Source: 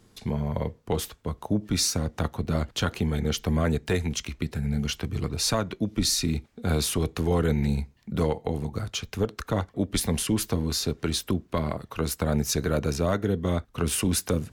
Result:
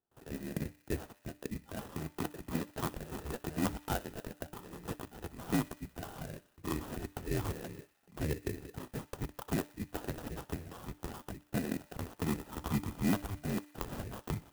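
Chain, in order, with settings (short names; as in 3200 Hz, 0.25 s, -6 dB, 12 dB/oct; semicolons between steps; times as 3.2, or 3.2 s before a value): mistuned SSB -390 Hz 420–2500 Hz; gate with hold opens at -57 dBFS; HPF 230 Hz 6 dB/oct; band shelf 750 Hz -12.5 dB 1.3 oct; sample-and-hold 20×; de-hum 296.1 Hz, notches 3; on a send: thin delay 61 ms, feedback 75%, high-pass 1600 Hz, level -19 dB; on the sum: clock jitter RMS 0.052 ms; gain +2.5 dB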